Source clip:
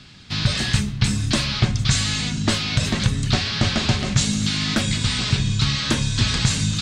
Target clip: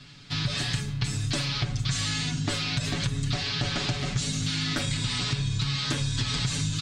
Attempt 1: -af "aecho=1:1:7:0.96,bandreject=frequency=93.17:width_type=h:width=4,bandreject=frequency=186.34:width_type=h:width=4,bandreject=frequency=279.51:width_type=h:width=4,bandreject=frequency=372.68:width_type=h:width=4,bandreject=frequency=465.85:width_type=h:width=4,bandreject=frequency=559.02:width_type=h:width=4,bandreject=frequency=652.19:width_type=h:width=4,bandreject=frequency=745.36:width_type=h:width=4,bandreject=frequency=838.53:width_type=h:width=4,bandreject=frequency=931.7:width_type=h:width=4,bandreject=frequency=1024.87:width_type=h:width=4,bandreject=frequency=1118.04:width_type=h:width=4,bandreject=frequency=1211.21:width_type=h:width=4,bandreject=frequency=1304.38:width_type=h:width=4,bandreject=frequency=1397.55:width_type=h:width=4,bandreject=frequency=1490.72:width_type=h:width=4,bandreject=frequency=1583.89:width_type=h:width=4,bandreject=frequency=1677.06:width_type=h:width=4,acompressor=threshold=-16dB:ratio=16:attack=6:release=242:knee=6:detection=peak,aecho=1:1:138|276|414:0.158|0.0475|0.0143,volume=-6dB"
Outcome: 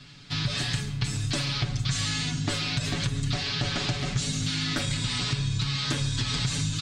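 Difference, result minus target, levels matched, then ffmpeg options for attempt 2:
echo-to-direct +11.5 dB
-af "aecho=1:1:7:0.96,bandreject=frequency=93.17:width_type=h:width=4,bandreject=frequency=186.34:width_type=h:width=4,bandreject=frequency=279.51:width_type=h:width=4,bandreject=frequency=372.68:width_type=h:width=4,bandreject=frequency=465.85:width_type=h:width=4,bandreject=frequency=559.02:width_type=h:width=4,bandreject=frequency=652.19:width_type=h:width=4,bandreject=frequency=745.36:width_type=h:width=4,bandreject=frequency=838.53:width_type=h:width=4,bandreject=frequency=931.7:width_type=h:width=4,bandreject=frequency=1024.87:width_type=h:width=4,bandreject=frequency=1118.04:width_type=h:width=4,bandreject=frequency=1211.21:width_type=h:width=4,bandreject=frequency=1304.38:width_type=h:width=4,bandreject=frequency=1397.55:width_type=h:width=4,bandreject=frequency=1490.72:width_type=h:width=4,bandreject=frequency=1583.89:width_type=h:width=4,bandreject=frequency=1677.06:width_type=h:width=4,acompressor=threshold=-16dB:ratio=16:attack=6:release=242:knee=6:detection=peak,aecho=1:1:138|276:0.0422|0.0127,volume=-6dB"

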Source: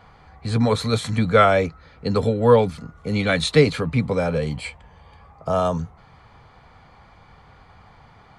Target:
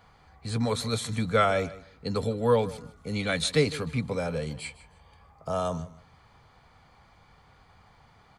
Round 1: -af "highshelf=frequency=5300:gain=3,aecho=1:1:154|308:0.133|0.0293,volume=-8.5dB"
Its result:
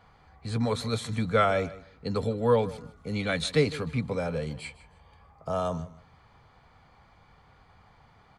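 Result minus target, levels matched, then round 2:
8,000 Hz band −5.0 dB
-af "highshelf=frequency=5300:gain=11,aecho=1:1:154|308:0.133|0.0293,volume=-8.5dB"

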